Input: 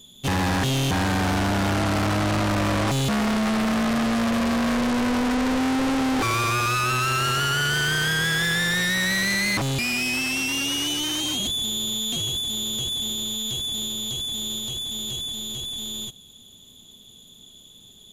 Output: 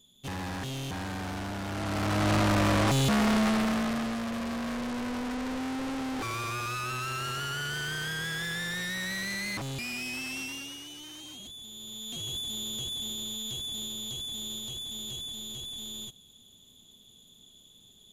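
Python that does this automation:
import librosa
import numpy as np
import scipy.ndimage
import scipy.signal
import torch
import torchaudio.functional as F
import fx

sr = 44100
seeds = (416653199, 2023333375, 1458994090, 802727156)

y = fx.gain(x, sr, db=fx.line((1.66, -13.0), (2.32, -2.0), (3.41, -2.0), (4.22, -11.0), (10.42, -11.0), (10.84, -19.0), (11.68, -19.0), (12.36, -8.0)))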